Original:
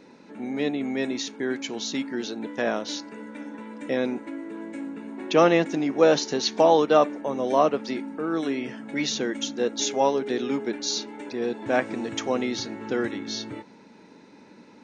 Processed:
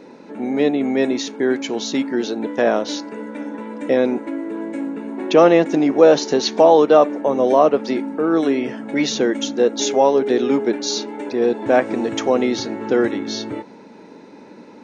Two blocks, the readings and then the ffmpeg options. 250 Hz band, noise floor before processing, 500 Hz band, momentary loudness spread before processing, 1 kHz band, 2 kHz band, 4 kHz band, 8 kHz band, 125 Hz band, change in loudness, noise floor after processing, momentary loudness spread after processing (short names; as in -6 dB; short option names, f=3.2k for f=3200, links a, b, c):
+8.0 dB, -51 dBFS, +8.5 dB, 16 LU, +6.0 dB, +4.5 dB, +4.0 dB, n/a, +4.5 dB, +7.5 dB, -42 dBFS, 14 LU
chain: -filter_complex "[0:a]equalizer=f=510:t=o:w=2.4:g=7.5,asplit=2[a][b];[b]alimiter=limit=-10.5dB:level=0:latency=1:release=126,volume=3dB[c];[a][c]amix=inputs=2:normalize=0,volume=-4dB"